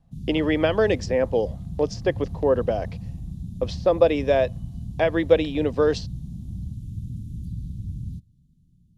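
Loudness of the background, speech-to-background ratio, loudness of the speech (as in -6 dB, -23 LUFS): -35.0 LUFS, 12.0 dB, -23.0 LUFS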